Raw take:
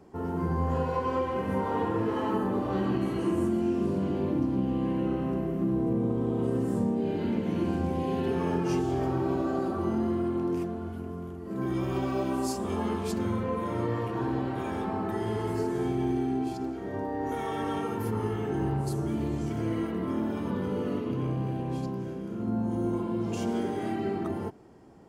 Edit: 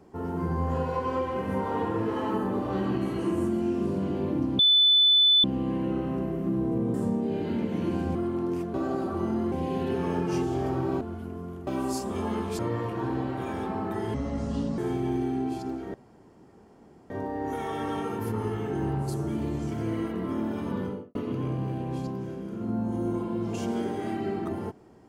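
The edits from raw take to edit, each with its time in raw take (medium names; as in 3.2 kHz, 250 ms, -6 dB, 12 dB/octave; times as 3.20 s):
4.59 s: add tone 3.5 kHz -16 dBFS 0.85 s
6.09–6.68 s: delete
7.89–9.38 s: swap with 10.16–10.75 s
11.41–12.21 s: delete
13.13–13.77 s: delete
15.32–15.73 s: speed 64%
16.89 s: insert room tone 1.16 s
20.58–20.94 s: studio fade out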